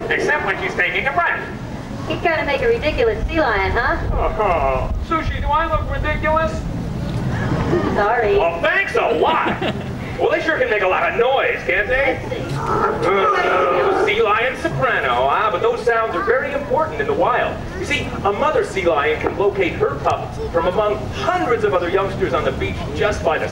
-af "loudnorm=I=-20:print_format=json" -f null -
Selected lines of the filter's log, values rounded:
"input_i" : "-18.4",
"input_tp" : "-4.7",
"input_lra" : "2.5",
"input_thresh" : "-28.4",